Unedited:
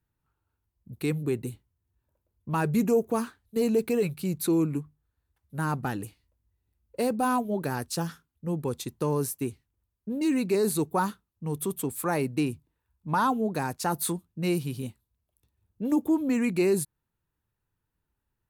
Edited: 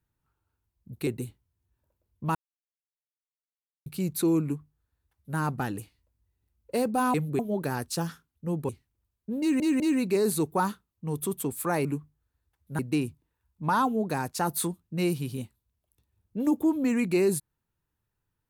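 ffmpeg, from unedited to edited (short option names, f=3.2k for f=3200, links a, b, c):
-filter_complex "[0:a]asplit=11[a][b][c][d][e][f][g][h][i][j][k];[a]atrim=end=1.072[l];[b]atrim=start=1.318:end=2.6,asetpts=PTS-STARTPTS,afade=t=out:st=1.278:d=0.004:c=hsin[m];[c]atrim=start=2.6:end=4.11,asetpts=PTS-STARTPTS,volume=0[n];[d]atrim=start=4.11:end=7.392,asetpts=PTS-STARTPTS,afade=t=in:d=0.004:c=hsin[o];[e]atrim=start=1.068:end=1.322[p];[f]atrim=start=7.388:end=8.692[q];[g]atrim=start=9.478:end=10.392[r];[h]atrim=start=10.188:end=10.392[s];[i]atrim=start=10.188:end=12.242[t];[j]atrim=start=4.678:end=5.622[u];[k]atrim=start=12.238[v];[m][n][o]concat=n=3:v=0:a=1[w];[l][w]acrossfade=d=0.004:c1=hsin:c2=hsin[x];[x][p]acrossfade=d=0.004:c1=hsin:c2=hsin[y];[y][q]acrossfade=d=0.004:c1=hsin:c2=hsin[z];[z][r]acrossfade=d=0.004:c1=hsin:c2=hsin[aa];[aa][s]acrossfade=d=0.004:c1=hsin:c2=hsin[ab];[ab][t]acrossfade=d=0.004:c1=hsin:c2=hsin[ac];[ac][u]acrossfade=d=0.004:c1=hsin:c2=hsin[ad];[ad][v]acrossfade=d=0.004:c1=hsin:c2=hsin"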